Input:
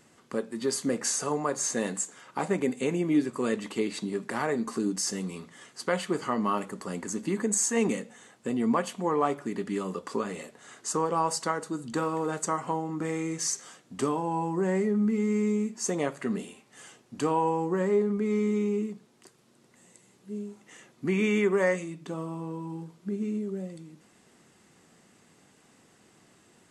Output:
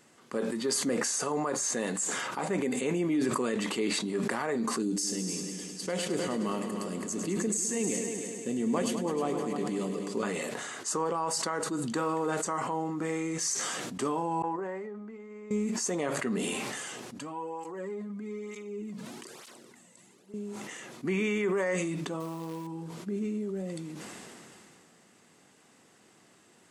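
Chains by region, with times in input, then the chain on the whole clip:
4.82–10.23 s: peaking EQ 1.2 kHz -11.5 dB 1.6 oct + multi-head delay 103 ms, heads all three, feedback 55%, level -12.5 dB
14.42–15.51 s: expander -19 dBFS + band-pass filter 940 Hz, Q 0.74
17.19–20.34 s: compression 3:1, threshold -34 dBFS + cancelling through-zero flanger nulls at 1.1 Hz, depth 2.8 ms
22.20–22.67 s: hum notches 60/120/180/240/300/360/420 Hz + short-mantissa float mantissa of 2-bit
whole clip: bass shelf 120 Hz -10.5 dB; peak limiter -21.5 dBFS; decay stretcher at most 20 dB/s

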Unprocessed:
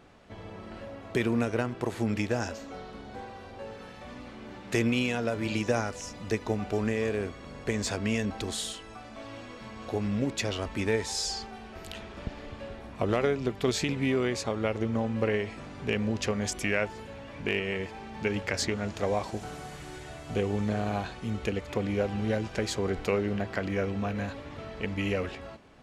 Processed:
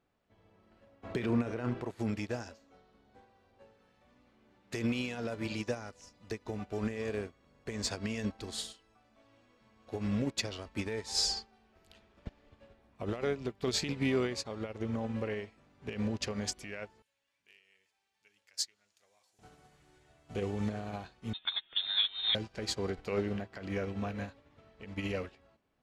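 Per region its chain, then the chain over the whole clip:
1.03–1.91 s: treble shelf 5.3 kHz -11 dB + doubling 33 ms -12 dB + level flattener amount 50%
17.02–19.39 s: pre-emphasis filter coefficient 0.97 + de-hum 73.68 Hz, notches 19
21.33–22.35 s: steep high-pass 200 Hz 72 dB/octave + frequency inversion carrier 3.9 kHz
whole clip: peak limiter -20.5 dBFS; dynamic bell 4.6 kHz, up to +6 dB, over -55 dBFS, Q 3.2; upward expansion 2.5:1, over -42 dBFS; trim +1.5 dB

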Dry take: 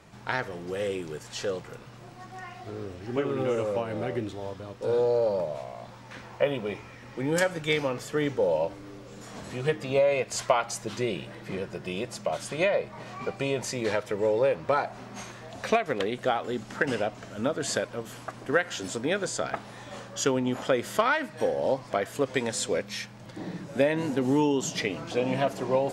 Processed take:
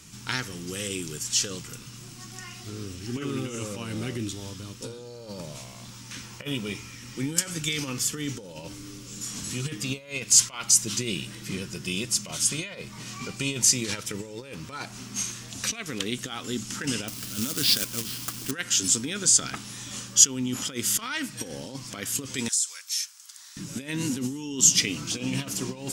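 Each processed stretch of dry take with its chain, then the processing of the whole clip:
17.08–18.51 s: careless resampling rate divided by 4×, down none, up filtered + companded quantiser 4-bit
22.48–23.57 s: high-pass 1.2 kHz 24 dB/octave + peaking EQ 2.5 kHz -10 dB 1.6 oct + compression 10:1, threshold -37 dBFS
whole clip: high-order bell 2.7 kHz -9 dB; compressor with a negative ratio -29 dBFS, ratio -1; FFT filter 280 Hz 0 dB, 640 Hz -18 dB, 2.9 kHz +14 dB; trim +1 dB

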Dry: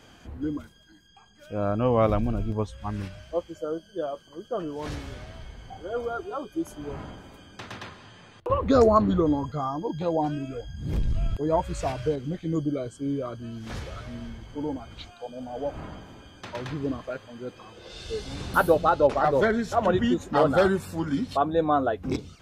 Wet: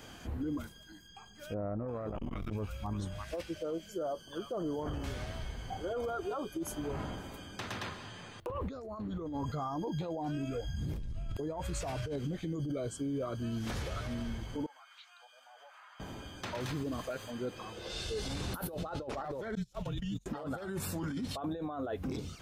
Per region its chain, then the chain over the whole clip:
1.54–5.04 s: bands offset in time lows, highs 340 ms, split 1.4 kHz + transformer saturation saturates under 370 Hz
14.66–16.00 s: high-pass 1.2 kHz 24 dB/octave + treble shelf 2.2 kHz -12 dB + compression 2.5:1, threshold -55 dBFS
16.60–17.31 s: treble shelf 5.2 kHz +12 dB + tape noise reduction on one side only decoder only
19.55–20.26 s: gate -26 dBFS, range -32 dB + high-order bell 810 Hz -15 dB 2.9 oct + frequency shift -49 Hz
whole clip: compressor with a negative ratio -31 dBFS, ratio -1; peak limiter -26 dBFS; treble shelf 11 kHz +11 dB; trim -3 dB

